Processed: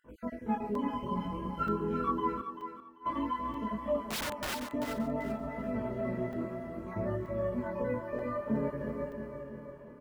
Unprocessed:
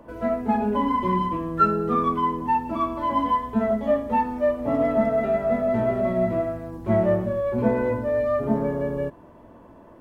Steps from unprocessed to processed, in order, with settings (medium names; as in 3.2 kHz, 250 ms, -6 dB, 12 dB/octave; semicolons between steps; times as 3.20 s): random holes in the spectrogram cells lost 39%; peaking EQ 710 Hz -12 dB 0.26 oct; band-stop 3.6 kHz, Q 9.2; feedback delay 334 ms, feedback 60%, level -7 dB; chorus 0.55 Hz, delay 19 ms, depth 5.6 ms; 0.92–1.69 s: comb 1.4 ms, depth 55%; 2.40–3.06 s: inverted gate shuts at -23 dBFS, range -28 dB; 4.08–4.55 s: integer overflow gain 24.5 dB; thinning echo 389 ms, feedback 24%, high-pass 330 Hz, level -8.5 dB; crackling interface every 0.93 s, samples 128, zero, from 0.75 s; trim -6 dB